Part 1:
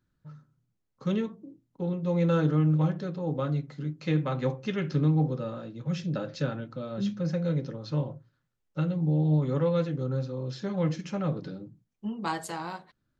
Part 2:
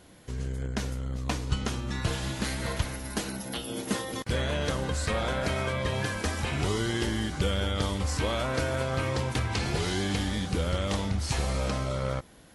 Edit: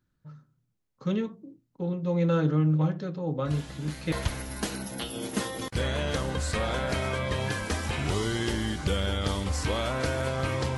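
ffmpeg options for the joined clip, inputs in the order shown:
-filter_complex "[1:a]asplit=2[s0][s1];[0:a]apad=whole_dur=10.77,atrim=end=10.77,atrim=end=4.122[s2];[s1]atrim=start=2.658:end=9.31[s3];[s0]atrim=start=1.99:end=2.66,asetpts=PTS-STARTPTS,volume=0.299,afade=t=in:d=0.004:c=hsin,afade=t=out:st=0.666:d=0.004:c=hsin,adelay=152145S[s4];[s2][s3]acrossfade=d=0.004:c1=hsin:c2=hsin[s5];[s5][s4]amix=inputs=2:normalize=0"

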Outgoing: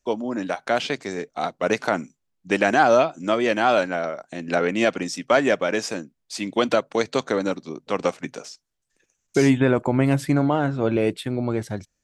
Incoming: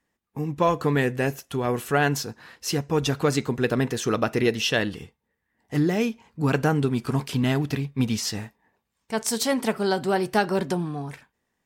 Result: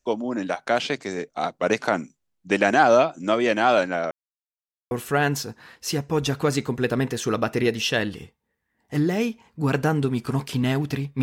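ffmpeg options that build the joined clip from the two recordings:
-filter_complex "[0:a]apad=whole_dur=11.22,atrim=end=11.22,asplit=2[s0][s1];[s0]atrim=end=4.11,asetpts=PTS-STARTPTS,afade=t=out:st=4.106:d=0.004:c=hsin[s2];[s1]atrim=start=4.11:end=4.91,asetpts=PTS-STARTPTS,volume=0[s3];[1:a]atrim=start=1.71:end=8.02,asetpts=PTS-STARTPTS,afade=t=in:d=0.004:c=hsin[s4];[s2][s3][s4]concat=n=3:v=0:a=1"

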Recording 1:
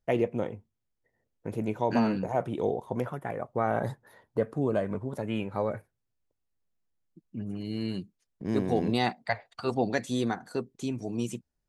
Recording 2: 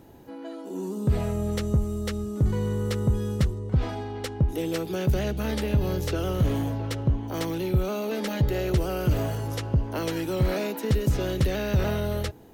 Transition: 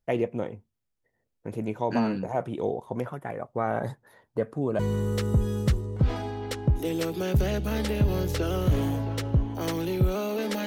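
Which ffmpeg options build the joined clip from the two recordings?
-filter_complex "[0:a]apad=whole_dur=10.66,atrim=end=10.66,atrim=end=4.792[s0];[1:a]atrim=start=2.518:end=8.39[s1];[s0][s1]acrossfade=d=0.004:c1=hsin:c2=hsin"

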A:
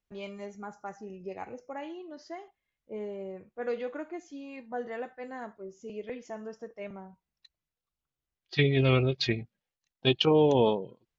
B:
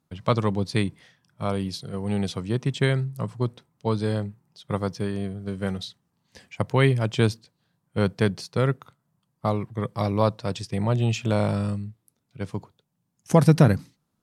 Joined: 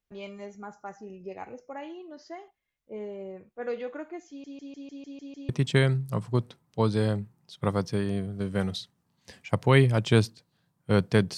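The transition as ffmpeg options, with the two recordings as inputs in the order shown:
-filter_complex "[0:a]apad=whole_dur=11.37,atrim=end=11.37,asplit=8[s0][s1][s2][s3][s4][s5][s6][s7];[s0]atrim=end=4.442[s8];[s1]atrim=start=4.288:end=4.442[s9];[s2]atrim=start=4.288:end=4.442[s10];[s3]atrim=start=4.288:end=4.442[s11];[s4]atrim=start=4.288:end=4.442[s12];[s5]atrim=start=4.288:end=4.442[s13];[s6]atrim=start=4.288:end=4.442[s14];[s7]atrim=start=4.288:end=4.442[s15];[1:a]atrim=start=2.558:end=8.44[s16];[s8][s9]acrossfade=d=0.004:c1=hsin:c2=hsin[s17];[s17][s10]acrossfade=d=0.004:c1=hsin:c2=hsin[s18];[s18][s11]acrossfade=d=0.004:c1=hsin:c2=hsin[s19];[s19][s12]acrossfade=d=0.004:c1=hsin:c2=hsin[s20];[s20][s13]acrossfade=d=0.004:c1=hsin:c2=hsin[s21];[s21][s14]acrossfade=d=0.004:c1=hsin:c2=hsin[s22];[s22][s15]acrossfade=d=0.004:c1=hsin:c2=hsin[s23];[s23][s16]acrossfade=d=0.004:c1=hsin:c2=hsin"

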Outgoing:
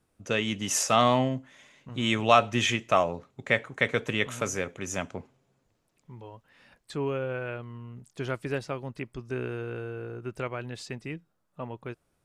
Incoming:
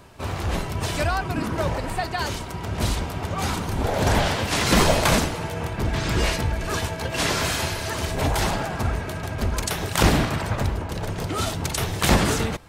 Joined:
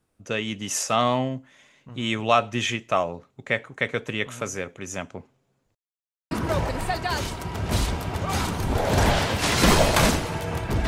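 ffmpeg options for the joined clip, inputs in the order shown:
-filter_complex "[0:a]apad=whole_dur=10.87,atrim=end=10.87,asplit=2[s0][s1];[s0]atrim=end=5.75,asetpts=PTS-STARTPTS,afade=t=out:st=5.746:d=0.004:c=hsin[s2];[s1]atrim=start=5.75:end=6.31,asetpts=PTS-STARTPTS,volume=0[s3];[1:a]atrim=start=1.4:end=5.96,asetpts=PTS-STARTPTS,afade=t=in:d=0.004:c=hsin[s4];[s2][s3][s4]concat=n=3:v=0:a=1"

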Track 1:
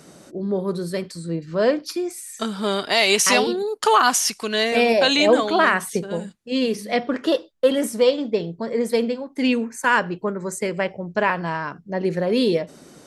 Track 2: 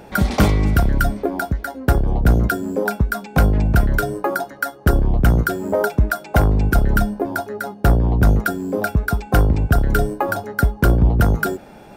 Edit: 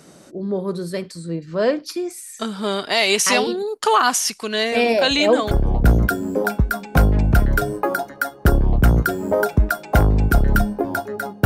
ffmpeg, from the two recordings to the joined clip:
-filter_complex "[1:a]asplit=2[s0][s1];[0:a]apad=whole_dur=11.45,atrim=end=11.45,atrim=end=5.512[s2];[s1]atrim=start=1.918:end=7.86[s3];[s0]atrim=start=1.14:end=1.92,asetpts=PTS-STARTPTS,volume=0.158,afade=t=in:d=0.004:c=hsin,afade=t=out:st=0.776:d=0.004:c=hsin,adelay=208593S[s4];[s2][s3]acrossfade=d=0.004:c1=hsin:c2=hsin[s5];[s5][s4]amix=inputs=2:normalize=0"

